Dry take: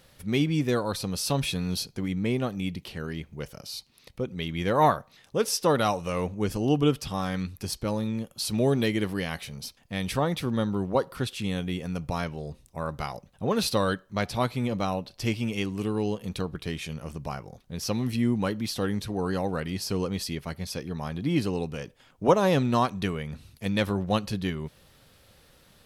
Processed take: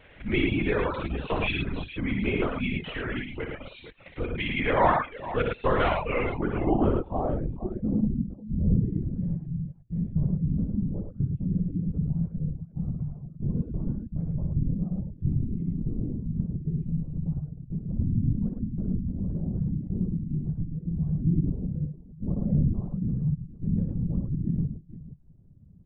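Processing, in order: in parallel at +2.5 dB: compressor, threshold -34 dBFS, peak gain reduction 18.5 dB; on the sum: low-pass sweep 2300 Hz -> 150 Hz, 6.17–8.25; LPC vocoder at 8 kHz whisper; tapped delay 60/108/192/461 ms -4/-3/-19/-12.5 dB; reverb removal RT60 0.53 s; gain -4.5 dB

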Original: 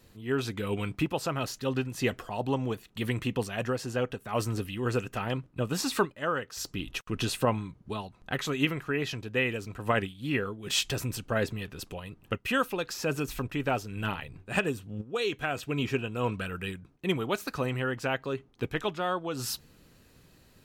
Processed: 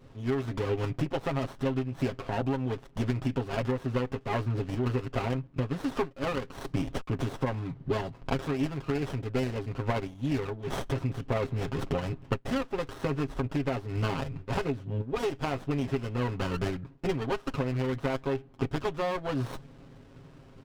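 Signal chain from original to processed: vocal rider 0.5 s; LPF 4000 Hz 24 dB/oct; comb 7.4 ms, depth 80%; compressor, threshold -30 dBFS, peak gain reduction 11.5 dB; running maximum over 17 samples; gain +4.5 dB

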